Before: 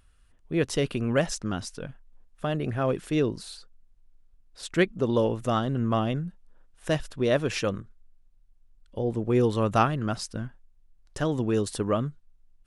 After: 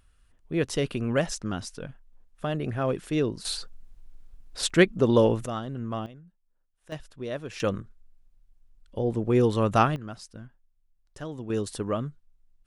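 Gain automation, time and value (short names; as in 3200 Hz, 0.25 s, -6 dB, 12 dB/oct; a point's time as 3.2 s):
-1 dB
from 3.45 s +11 dB
from 4.7 s +4 dB
from 5.46 s -7 dB
from 6.06 s -19 dB
from 6.92 s -10 dB
from 7.6 s +1 dB
from 9.96 s -10 dB
from 11.5 s -3 dB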